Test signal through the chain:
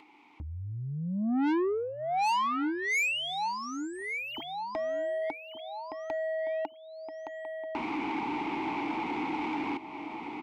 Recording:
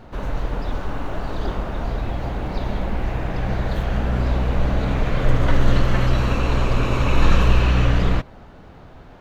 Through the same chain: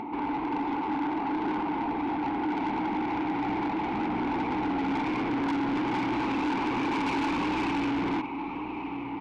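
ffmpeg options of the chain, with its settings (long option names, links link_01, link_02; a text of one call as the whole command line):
ffmpeg -i in.wav -filter_complex "[0:a]asplit=2[link_01][link_02];[link_02]highpass=frequency=720:poles=1,volume=19dB,asoftclip=type=tanh:threshold=-2dB[link_03];[link_01][link_03]amix=inputs=2:normalize=0,lowpass=frequency=1600:poles=1,volume=-6dB,lowpass=frequency=3300:poles=1,asplit=2[link_04][link_05];[link_05]acontrast=79,volume=1dB[link_06];[link_04][link_06]amix=inputs=2:normalize=0,asplit=3[link_07][link_08][link_09];[link_07]bandpass=frequency=300:width_type=q:width=8,volume=0dB[link_10];[link_08]bandpass=frequency=870:width_type=q:width=8,volume=-6dB[link_11];[link_09]bandpass=frequency=2240:width_type=q:width=8,volume=-9dB[link_12];[link_10][link_11][link_12]amix=inputs=3:normalize=0,asplit=2[link_13][link_14];[link_14]aecho=0:1:1168|2336|3504:0.2|0.0718|0.0259[link_15];[link_13][link_15]amix=inputs=2:normalize=0,acompressor=mode=upward:threshold=-29dB:ratio=2.5,asoftclip=type=tanh:threshold=-24dB,volume=-1.5dB" out.wav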